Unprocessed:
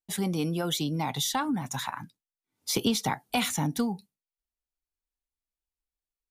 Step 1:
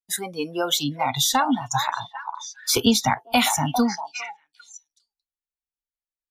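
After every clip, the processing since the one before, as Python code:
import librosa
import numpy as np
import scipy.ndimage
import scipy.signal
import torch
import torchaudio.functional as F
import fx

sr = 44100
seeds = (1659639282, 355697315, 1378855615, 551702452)

y = fx.echo_stepped(x, sr, ms=402, hz=800.0, octaves=1.4, feedback_pct=70, wet_db=-4.0)
y = fx.noise_reduce_blind(y, sr, reduce_db=20)
y = F.gain(torch.from_numpy(y), 8.5).numpy()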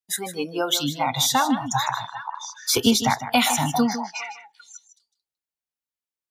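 y = scipy.signal.sosfilt(scipy.signal.butter(2, 70.0, 'highpass', fs=sr, output='sos'), x)
y = y + 10.0 ** (-11.5 / 20.0) * np.pad(y, (int(154 * sr / 1000.0), 0))[:len(y)]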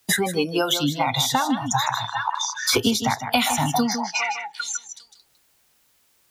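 y = fx.peak_eq(x, sr, hz=110.0, db=6.0, octaves=0.27)
y = fx.band_squash(y, sr, depth_pct=100)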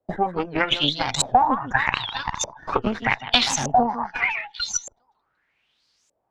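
y = fx.cheby_harmonics(x, sr, harmonics=(5, 6, 7, 8), levels_db=(-20, -11, -19, -22), full_scale_db=-3.5)
y = fx.filter_lfo_lowpass(y, sr, shape='saw_up', hz=0.82, low_hz=560.0, high_hz=7200.0, q=5.4)
y = fx.record_warp(y, sr, rpm=78.0, depth_cents=160.0)
y = F.gain(torch.from_numpy(y), -4.0).numpy()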